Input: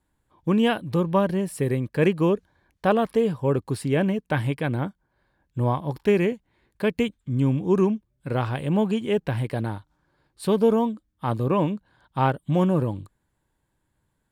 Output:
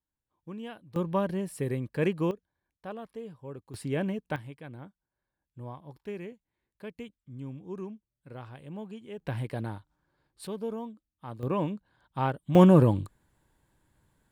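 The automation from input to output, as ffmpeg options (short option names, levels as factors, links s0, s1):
-af "asetnsamples=n=441:p=0,asendcmd='0.96 volume volume -7dB;2.31 volume volume -19.5dB;3.74 volume volume -8dB;4.36 volume volume -18.5dB;9.2 volume volume -7dB;10.47 volume volume -15.5dB;11.43 volume volume -7dB;12.55 volume volume 4dB',volume=0.1"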